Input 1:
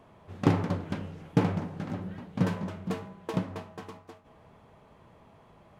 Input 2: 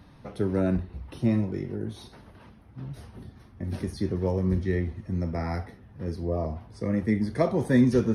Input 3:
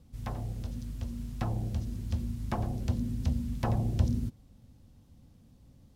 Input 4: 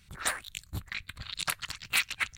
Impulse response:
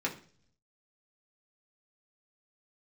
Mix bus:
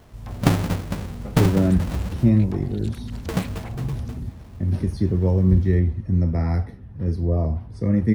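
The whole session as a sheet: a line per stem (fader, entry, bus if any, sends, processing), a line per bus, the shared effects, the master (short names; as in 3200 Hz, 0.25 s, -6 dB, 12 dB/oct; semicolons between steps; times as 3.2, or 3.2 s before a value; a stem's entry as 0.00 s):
-1.0 dB, 0.00 s, muted 2.29–3.12, no bus, no send, half-waves squared off
-1.0 dB, 1.00 s, no bus, no send, low shelf 310 Hz +9 dB
-1.5 dB, 0.00 s, bus A, no send, dry
-12.5 dB, 1.45 s, bus A, no send, dry
bus A: 0.0 dB, limiter -28 dBFS, peak gain reduction 11.5 dB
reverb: off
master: low shelf 130 Hz +5.5 dB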